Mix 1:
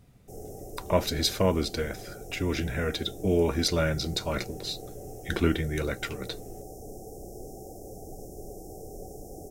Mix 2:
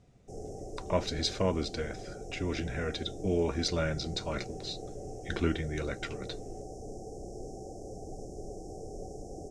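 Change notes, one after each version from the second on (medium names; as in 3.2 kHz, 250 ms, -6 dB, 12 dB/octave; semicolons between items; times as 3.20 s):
speech -5.0 dB; master: add low-pass 7.4 kHz 24 dB/octave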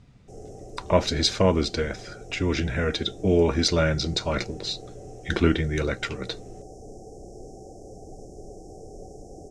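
speech +9.0 dB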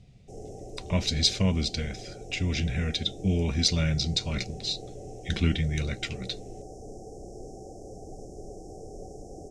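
speech: add high-order bell 700 Hz -13.5 dB 2.8 oct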